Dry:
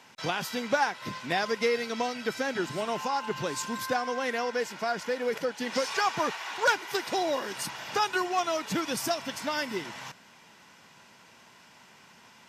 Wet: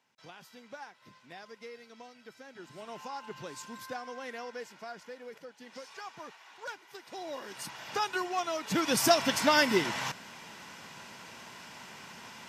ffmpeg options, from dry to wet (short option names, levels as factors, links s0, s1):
-af "volume=4.73,afade=t=in:st=2.52:d=0.54:silence=0.354813,afade=t=out:st=4.45:d=0.95:silence=0.473151,afade=t=in:st=7.04:d=0.86:silence=0.223872,afade=t=in:st=8.61:d=0.57:silence=0.266073"